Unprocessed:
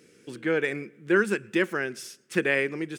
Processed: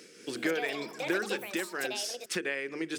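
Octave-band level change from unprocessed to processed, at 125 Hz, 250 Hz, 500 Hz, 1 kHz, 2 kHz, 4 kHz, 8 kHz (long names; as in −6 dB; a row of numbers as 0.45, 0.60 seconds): −12.0, −7.0, −7.5, −3.5, −6.5, +3.5, +4.5 decibels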